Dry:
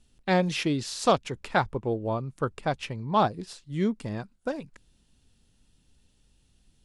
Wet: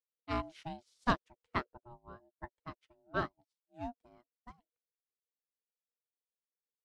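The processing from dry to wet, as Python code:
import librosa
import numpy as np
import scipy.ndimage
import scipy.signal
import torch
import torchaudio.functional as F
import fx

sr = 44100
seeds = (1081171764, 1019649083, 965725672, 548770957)

y = x * np.sin(2.0 * np.pi * 480.0 * np.arange(len(x)) / sr)
y = fx.notch_comb(y, sr, f0_hz=240.0, at=(1.84, 3.81))
y = fx.upward_expand(y, sr, threshold_db=-49.0, expansion=2.5)
y = y * 10.0 ** (-4.0 / 20.0)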